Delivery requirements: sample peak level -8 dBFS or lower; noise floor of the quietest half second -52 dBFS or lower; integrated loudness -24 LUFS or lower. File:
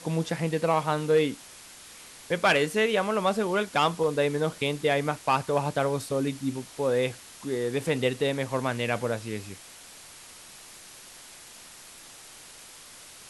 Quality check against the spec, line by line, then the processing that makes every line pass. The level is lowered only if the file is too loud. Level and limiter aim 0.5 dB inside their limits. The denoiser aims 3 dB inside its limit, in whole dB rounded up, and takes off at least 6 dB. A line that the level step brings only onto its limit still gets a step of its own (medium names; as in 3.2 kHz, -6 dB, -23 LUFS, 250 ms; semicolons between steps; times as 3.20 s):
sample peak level -10.5 dBFS: pass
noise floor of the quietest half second -48 dBFS: fail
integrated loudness -27.0 LUFS: pass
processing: noise reduction 7 dB, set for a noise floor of -48 dBFS